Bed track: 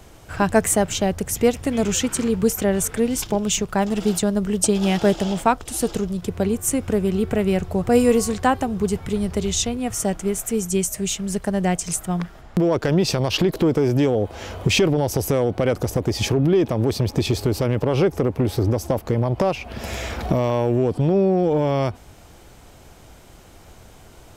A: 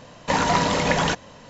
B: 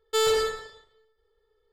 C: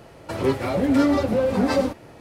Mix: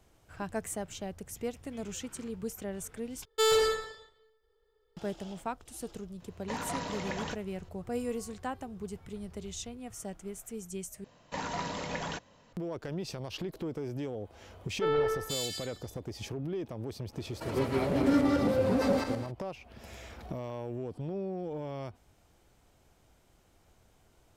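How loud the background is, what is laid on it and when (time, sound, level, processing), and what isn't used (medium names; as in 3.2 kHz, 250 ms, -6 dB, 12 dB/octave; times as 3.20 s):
bed track -18.5 dB
3.25 s: replace with B -2 dB
6.20 s: add A -16.5 dB
11.04 s: replace with A -15.5 dB
14.68 s: add B -4.5 dB + bands offset in time lows, highs 480 ms, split 2.5 kHz
17.12 s: add C -10 dB, fades 0.02 s + backward echo that repeats 113 ms, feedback 45%, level -0.5 dB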